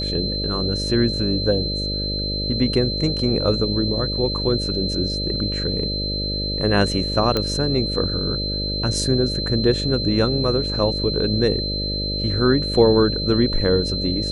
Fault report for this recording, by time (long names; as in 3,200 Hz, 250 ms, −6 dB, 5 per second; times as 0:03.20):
mains buzz 50 Hz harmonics 12 −27 dBFS
whistle 4,100 Hz −25 dBFS
0:07.37: click −8 dBFS